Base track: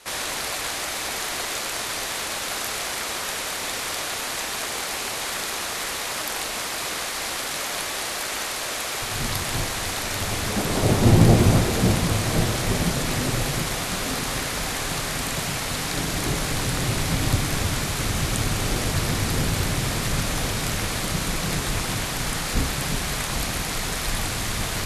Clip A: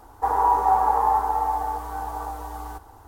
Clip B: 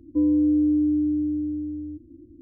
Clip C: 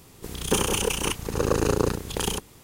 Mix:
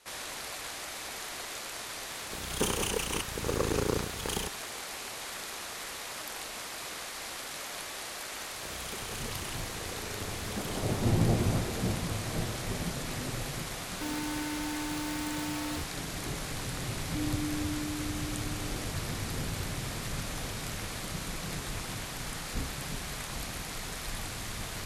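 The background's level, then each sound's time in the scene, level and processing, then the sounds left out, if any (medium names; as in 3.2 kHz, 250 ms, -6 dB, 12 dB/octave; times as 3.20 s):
base track -11.5 dB
2.09 s: add C -7 dB
8.41 s: add C -6 dB + compression 5:1, threshold -35 dBFS
13.86 s: add B -13 dB + Schmitt trigger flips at -35.5 dBFS
16.99 s: add B -16 dB
not used: A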